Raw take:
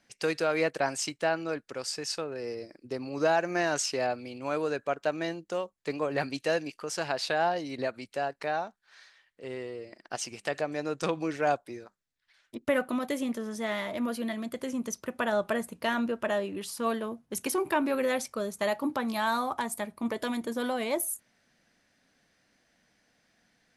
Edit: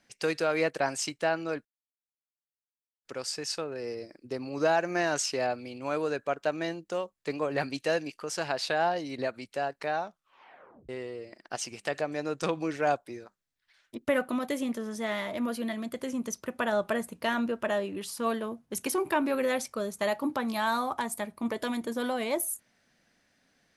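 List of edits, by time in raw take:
0:01.65: splice in silence 1.40 s
0:08.64: tape stop 0.85 s

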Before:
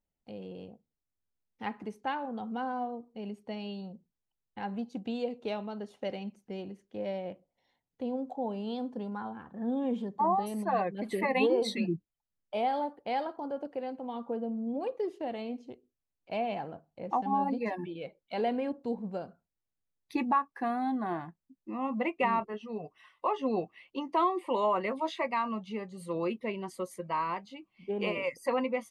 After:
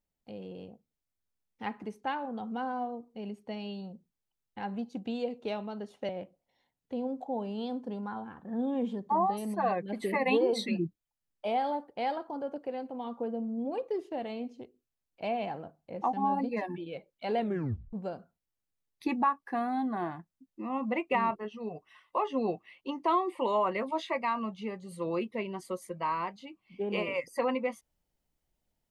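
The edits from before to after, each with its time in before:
0:06.09–0:07.18: remove
0:18.48: tape stop 0.54 s

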